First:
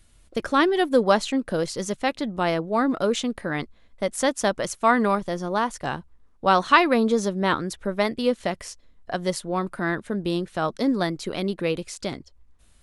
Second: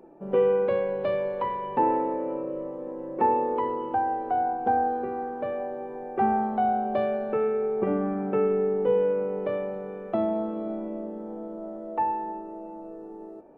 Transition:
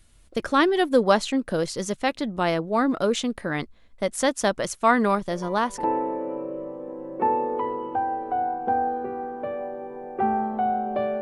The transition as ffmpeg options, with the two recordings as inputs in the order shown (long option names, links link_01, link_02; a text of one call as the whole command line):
ffmpeg -i cue0.wav -i cue1.wav -filter_complex "[1:a]asplit=2[link_01][link_02];[0:a]apad=whole_dur=11.21,atrim=end=11.21,atrim=end=5.842[link_03];[link_02]atrim=start=1.828:end=7.2[link_04];[link_01]atrim=start=1.28:end=1.83,asetpts=PTS-STARTPTS,volume=-10.5dB,afade=type=in:duration=0.004:curve=hsin,afade=type=out:start_time=0.546:duration=0.004:curve=hsin,adelay=233289S[link_05];[link_03][link_04]acrossfade=duration=0.004:curve1=hsin:curve2=hsin[link_06];[link_06][link_05]amix=inputs=2:normalize=0" out.wav